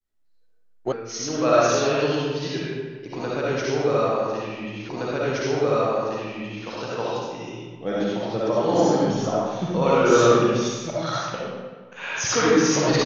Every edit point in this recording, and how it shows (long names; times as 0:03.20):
0:00.92: cut off before it has died away
0:04.89: the same again, the last 1.77 s